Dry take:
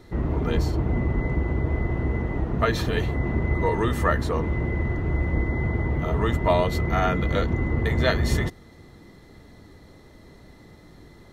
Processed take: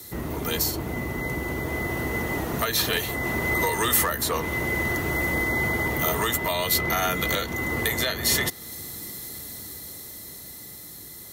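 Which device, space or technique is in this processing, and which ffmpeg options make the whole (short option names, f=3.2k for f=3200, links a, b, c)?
FM broadcast chain: -filter_complex "[0:a]highpass=62,dynaudnorm=f=220:g=17:m=11.5dB,acrossover=split=170|510|1100|4500[a][b][c][d][e];[a]acompressor=threshold=-33dB:ratio=4[f];[b]acompressor=threshold=-30dB:ratio=4[g];[c]acompressor=threshold=-25dB:ratio=4[h];[d]acompressor=threshold=-26dB:ratio=4[i];[e]acompressor=threshold=-50dB:ratio=4[j];[f][g][h][i][j]amix=inputs=5:normalize=0,aemphasis=mode=production:type=75fm,alimiter=limit=-14.5dB:level=0:latency=1:release=465,asoftclip=type=hard:threshold=-16.5dB,lowpass=f=15k:w=0.5412,lowpass=f=15k:w=1.3066,aemphasis=mode=production:type=75fm"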